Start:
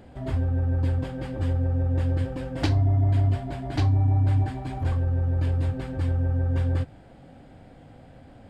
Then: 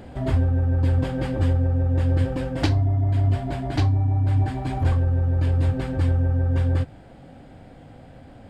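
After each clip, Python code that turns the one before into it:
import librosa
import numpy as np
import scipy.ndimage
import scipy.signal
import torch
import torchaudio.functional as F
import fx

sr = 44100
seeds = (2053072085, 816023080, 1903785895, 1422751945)

y = fx.rider(x, sr, range_db=10, speed_s=0.5)
y = y * librosa.db_to_amplitude(3.0)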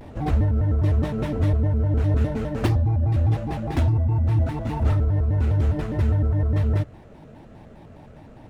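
y = scipy.signal.medfilt(x, 9)
y = fx.vibrato_shape(y, sr, shape='square', rate_hz=4.9, depth_cents=250.0)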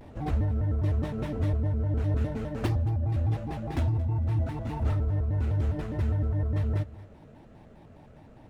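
y = fx.echo_feedback(x, sr, ms=226, feedback_pct=26, wet_db=-19)
y = y * librosa.db_to_amplitude(-6.5)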